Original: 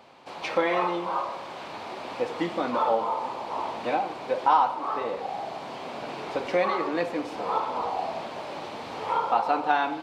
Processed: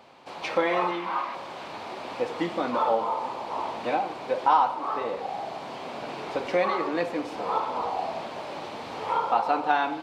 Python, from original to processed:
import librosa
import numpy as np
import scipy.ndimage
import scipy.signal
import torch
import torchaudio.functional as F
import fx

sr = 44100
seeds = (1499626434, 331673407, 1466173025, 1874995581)

y = fx.graphic_eq(x, sr, hz=(125, 250, 500, 2000, 8000), db=(-12, 7, -9, 8, -5), at=(0.91, 1.35))